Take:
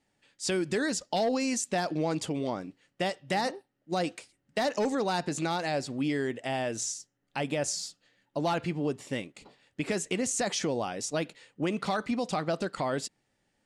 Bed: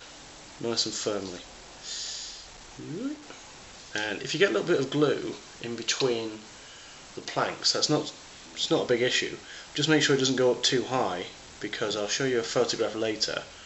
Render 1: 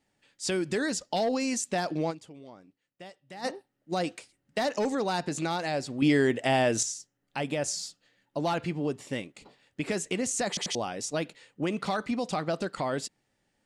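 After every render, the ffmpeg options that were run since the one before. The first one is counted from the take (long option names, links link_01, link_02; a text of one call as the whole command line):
ffmpeg -i in.wav -filter_complex "[0:a]asettb=1/sr,asplit=3[link_01][link_02][link_03];[link_01]atrim=end=6.024[link_04];[link_02]atrim=start=6.02:end=6.83,asetpts=PTS-STARTPTS,afade=type=in:duration=0.004:curve=qsin,afade=type=out:start_time=0.806:duration=0.004:curve=qsin,acontrast=87[link_05];[link_03]atrim=start=6.826[link_06];[link_04][link_05]acrossfade=duration=0.004:curve1=hsin:curve2=qsin[link_07];[link_07][link_06]acrossfade=duration=0.004:curve1=qsin:curve2=hsin,asplit=6[link_08][link_09][link_10][link_11][link_12][link_13];[link_08]atrim=end=2.3,asetpts=PTS-STARTPTS,afade=type=out:start_time=2.1:duration=0.2:curve=exp:silence=0.158489[link_14];[link_09]atrim=start=2.3:end=3.25,asetpts=PTS-STARTPTS,volume=-16dB[link_15];[link_10]atrim=start=3.25:end=10.572,asetpts=PTS-STARTPTS,afade=type=in:duration=0.2:curve=exp:silence=0.158489[link_16];[link_11]atrim=start=10.478:end=10.572[link_17];[link_12]atrim=start=10.478:end=10.572[link_18];[link_13]atrim=start=10.748[link_19];[link_14][link_15][link_16]concat=n=3:v=0:a=1[link_20];[link_20][link_17]acrossfade=duration=0.004:curve1=hsin:curve2=hsin[link_21];[link_21][link_18]acrossfade=duration=0.004:curve1=hsin:curve2=hsin[link_22];[link_22][link_19]acrossfade=duration=0.004:curve1=hsin:curve2=hsin" out.wav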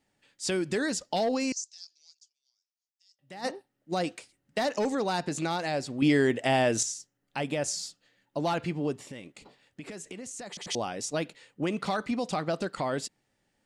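ffmpeg -i in.wav -filter_complex "[0:a]asettb=1/sr,asplit=3[link_01][link_02][link_03];[link_01]atrim=end=1.524[link_04];[link_02]atrim=start=1.52:end=3.19,asetpts=PTS-STARTPTS,afade=type=in:duration=0.004:curve=qsin,afade=type=out:start_time=1.666:duration=0.004:curve=qsin,asuperpass=centerf=5700:order=4:qfactor=2.8[link_05];[link_03]atrim=start=3.186[link_06];[link_04][link_05]acrossfade=duration=0.004:curve1=hsin:curve2=qsin[link_07];[link_07][link_06]acrossfade=duration=0.004:curve1=qsin:curve2=hsin,asettb=1/sr,asplit=3[link_08][link_09][link_10];[link_08]atrim=end=9.004[link_11];[link_09]atrim=start=9:end=10.67,asetpts=PTS-STARTPTS,afade=type=in:duration=0.004:curve=qsin,afade=type=out:start_time=1.666:duration=0.004:curve=qsin,acompressor=threshold=-38dB:ratio=6:attack=3.2:release=140:knee=1:detection=peak[link_12];[link_10]atrim=start=10.666[link_13];[link_11][link_12]acrossfade=duration=0.004:curve1=hsin:curve2=qsin[link_14];[link_14][link_13]acrossfade=duration=0.004:curve1=qsin:curve2=hsin" out.wav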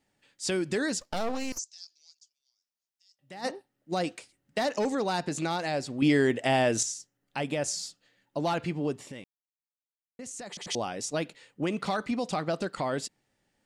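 ffmpeg -i in.wav -filter_complex "[0:a]asplit=3[link_01][link_02][link_03];[link_01]afade=type=out:start_time=1:duration=0.02[link_04];[link_02]aeval=exprs='max(val(0),0)':channel_layout=same,afade=type=in:start_time=1:duration=0.02,afade=type=out:start_time=1.57:duration=0.02[link_05];[link_03]afade=type=in:start_time=1.57:duration=0.02[link_06];[link_04][link_05][link_06]amix=inputs=3:normalize=0,asplit=3[link_07][link_08][link_09];[link_07]atrim=end=9.24,asetpts=PTS-STARTPTS,afade=type=out:start_time=9.236:duration=0.004:curve=hsin[link_10];[link_08]atrim=start=9.24:end=10.19,asetpts=PTS-STARTPTS,volume=0[link_11];[link_09]atrim=start=10.19,asetpts=PTS-STARTPTS,afade=type=in:duration=0.004:curve=hsin[link_12];[link_10][link_11][link_12]concat=n=3:v=0:a=1" out.wav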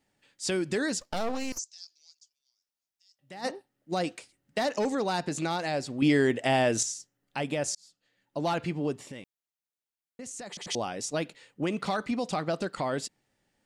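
ffmpeg -i in.wav -filter_complex "[0:a]asplit=2[link_01][link_02];[link_01]atrim=end=7.75,asetpts=PTS-STARTPTS,afade=type=out:start_time=7.746:duration=0.004:curve=hsin[link_03];[link_02]atrim=start=7.75,asetpts=PTS-STARTPTS,afade=type=in:duration=0.73[link_04];[link_03][link_04]concat=n=2:v=0:a=1" out.wav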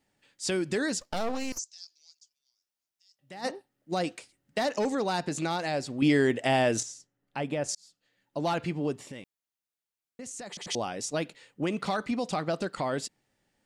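ffmpeg -i in.wav -filter_complex "[0:a]asettb=1/sr,asplit=3[link_01][link_02][link_03];[link_01]atrim=end=6.804[link_04];[link_02]atrim=start=6.8:end=7.69,asetpts=PTS-STARTPTS,afade=type=in:duration=0.004:curve=qsin,afade=type=out:start_time=0.886:duration=0.004:curve=qsin,highshelf=frequency=3100:gain=-9.5[link_05];[link_03]atrim=start=7.686[link_06];[link_04][link_05]acrossfade=duration=0.004:curve1=hsin:curve2=qsin[link_07];[link_07][link_06]acrossfade=duration=0.004:curve1=qsin:curve2=hsin" out.wav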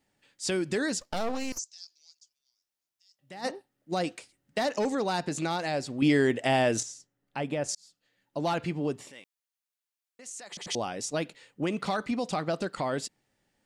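ffmpeg -i in.wav -filter_complex "[0:a]asettb=1/sr,asplit=3[link_01][link_02][link_03];[link_01]atrim=end=9.104[link_04];[link_02]atrim=start=9.1:end=10.52,asetpts=PTS-STARTPTS,afade=type=in:duration=0.004:curve=qsin,afade=type=out:start_time=1.416:duration=0.004:curve=qsin,highpass=frequency=1000:poles=1[link_05];[link_03]atrim=start=10.516[link_06];[link_04][link_05]acrossfade=duration=0.004:curve1=hsin:curve2=qsin[link_07];[link_07][link_06]acrossfade=duration=0.004:curve1=qsin:curve2=hsin" out.wav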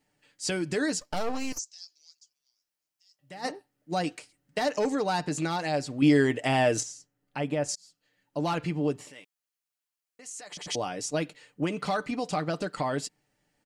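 ffmpeg -i in.wav -af "bandreject=frequency=3600:width=16,aecho=1:1:6.7:0.43" out.wav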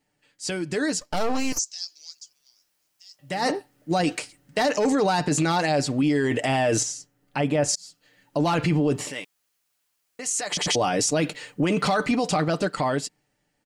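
ffmpeg -i in.wav -af "dynaudnorm=framelen=280:gausssize=11:maxgain=16.5dB,alimiter=limit=-14.5dB:level=0:latency=1:release=11" out.wav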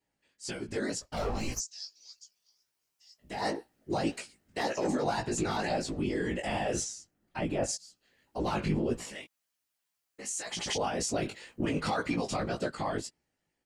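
ffmpeg -i in.wav -af "afftfilt=real='hypot(re,im)*cos(2*PI*random(0))':imag='hypot(re,im)*sin(2*PI*random(1))':win_size=512:overlap=0.75,flanger=delay=16.5:depth=3.4:speed=1.9" out.wav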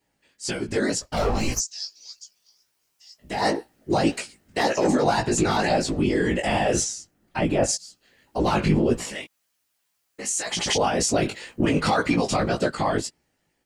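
ffmpeg -i in.wav -af "volume=9.5dB" out.wav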